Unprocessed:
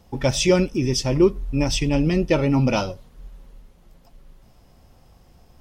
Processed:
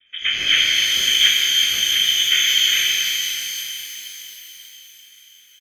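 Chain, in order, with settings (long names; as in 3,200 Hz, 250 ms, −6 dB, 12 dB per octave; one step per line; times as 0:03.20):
cochlear-implant simulation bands 3
phaser with its sweep stopped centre 690 Hz, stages 6
double-tracking delay 37 ms −6 dB
on a send: echo with a time of its own for lows and highs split 850 Hz, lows 530 ms, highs 307 ms, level −15.5 dB
on the sum: voice inversion scrambler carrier 3,500 Hz
reverb with rising layers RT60 3.4 s, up +12 semitones, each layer −8 dB, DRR −3 dB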